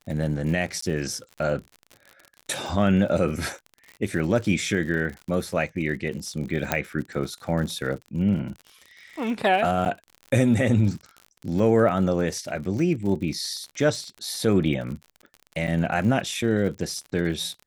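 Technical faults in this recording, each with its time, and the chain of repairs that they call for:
crackle 56/s -33 dBFS
0.81–0.82 gap 14 ms
6.72 pop -6 dBFS
9.85–9.86 gap 8.7 ms
15.67–15.68 gap 6.7 ms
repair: de-click; interpolate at 0.81, 14 ms; interpolate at 9.85, 8.7 ms; interpolate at 15.67, 6.7 ms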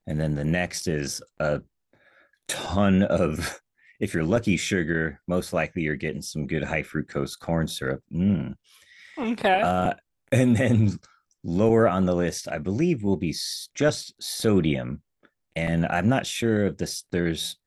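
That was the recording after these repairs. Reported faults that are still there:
none

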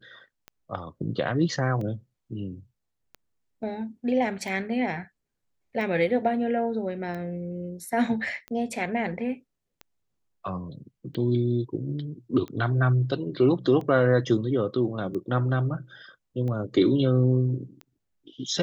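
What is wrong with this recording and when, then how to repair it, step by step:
tick 45 rpm -25 dBFS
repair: de-click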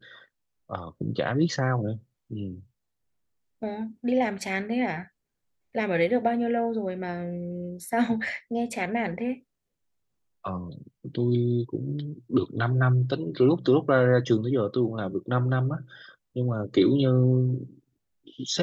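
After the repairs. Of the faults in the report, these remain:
none

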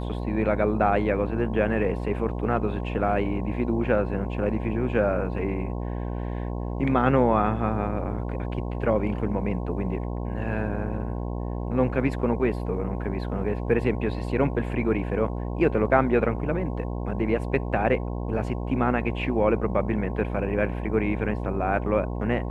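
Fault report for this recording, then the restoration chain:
buzz 60 Hz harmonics 18 -30 dBFS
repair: de-hum 60 Hz, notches 18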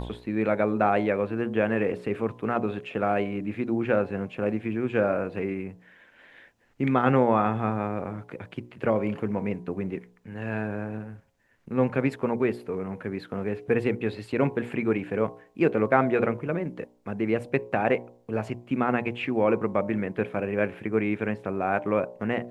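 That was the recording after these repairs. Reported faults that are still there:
none

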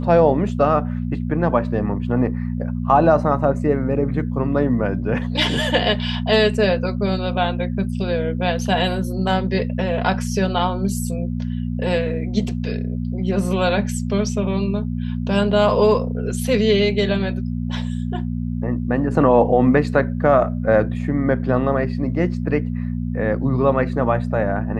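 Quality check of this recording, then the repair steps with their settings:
hum 60 Hz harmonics 4 -24 dBFS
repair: de-hum 60 Hz, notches 4

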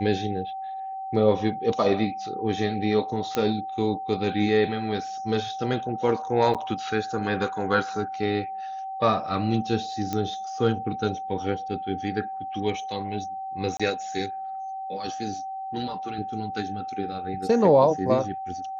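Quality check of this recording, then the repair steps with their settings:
tone 770 Hz -31 dBFS
3.35 pop -11 dBFS
6.54–6.55 gap 7.2 ms
10.13 pop -14 dBFS
13.77–13.8 gap 26 ms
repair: de-click; notch 770 Hz, Q 30; interpolate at 6.54, 7.2 ms; interpolate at 13.77, 26 ms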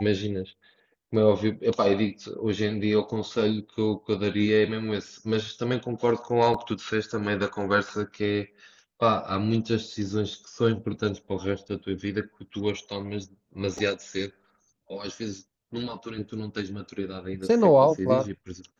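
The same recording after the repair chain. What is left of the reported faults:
none

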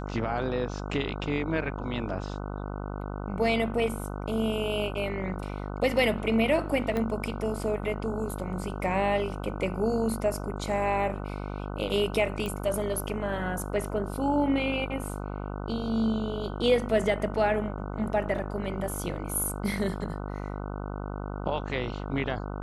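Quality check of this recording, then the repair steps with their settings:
buzz 50 Hz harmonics 30 -35 dBFS
6.97 pop -18 dBFS
12.46 pop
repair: de-click; de-hum 50 Hz, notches 30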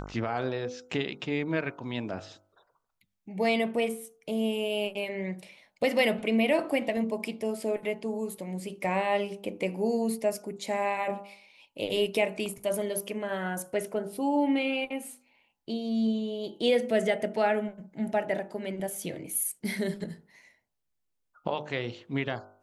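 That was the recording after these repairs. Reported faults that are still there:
6.97 pop

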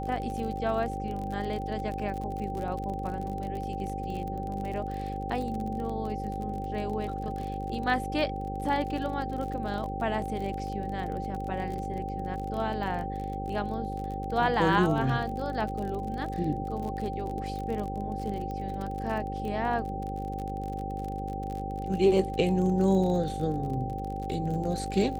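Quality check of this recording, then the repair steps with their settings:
buzz 50 Hz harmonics 11 -36 dBFS
crackle 42/s -34 dBFS
tone 780 Hz -35 dBFS
18.51 pop -26 dBFS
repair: de-click; de-hum 50 Hz, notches 11; notch 780 Hz, Q 30

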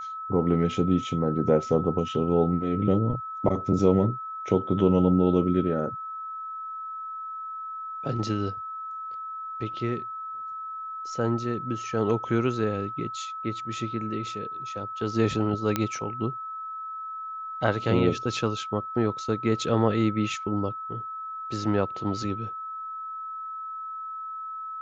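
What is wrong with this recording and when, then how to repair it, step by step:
tone 1300 Hz -33 dBFS
15.76 pop -10 dBFS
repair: de-click; notch 1300 Hz, Q 30

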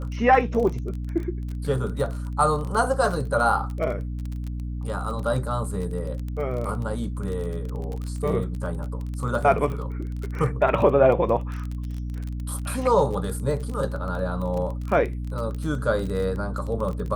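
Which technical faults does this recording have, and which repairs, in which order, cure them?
crackle 23/s -29 dBFS
hum 60 Hz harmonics 5 -30 dBFS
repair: de-click; de-hum 60 Hz, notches 5

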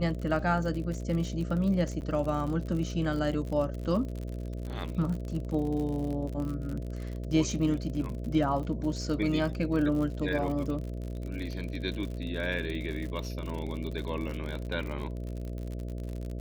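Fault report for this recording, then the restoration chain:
buzz 60 Hz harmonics 11 -36 dBFS
crackle 57/s -35 dBFS
2.01–2.02 gap 9.5 ms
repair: de-click; de-hum 60 Hz, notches 11; interpolate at 2.01, 9.5 ms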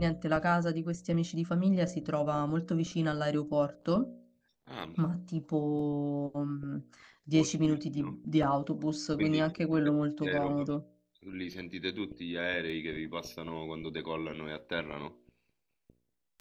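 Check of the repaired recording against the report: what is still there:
none

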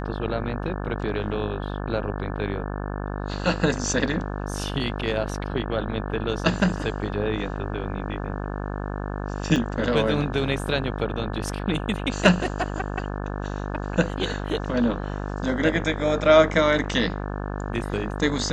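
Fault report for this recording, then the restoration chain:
buzz 50 Hz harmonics 35 -30 dBFS
9.56 gap 3.4 ms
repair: de-hum 50 Hz, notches 35; interpolate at 9.56, 3.4 ms

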